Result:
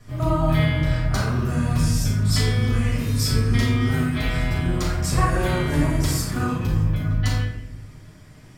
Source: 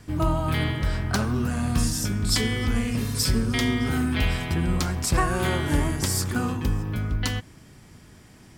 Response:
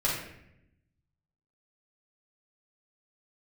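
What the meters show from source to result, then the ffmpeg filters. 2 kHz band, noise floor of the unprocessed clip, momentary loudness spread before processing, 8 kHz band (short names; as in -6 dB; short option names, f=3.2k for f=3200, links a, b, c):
+1.0 dB, -50 dBFS, 4 LU, -1.5 dB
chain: -filter_complex "[1:a]atrim=start_sample=2205[a];[0:a][a]afir=irnorm=-1:irlink=0,volume=-8dB"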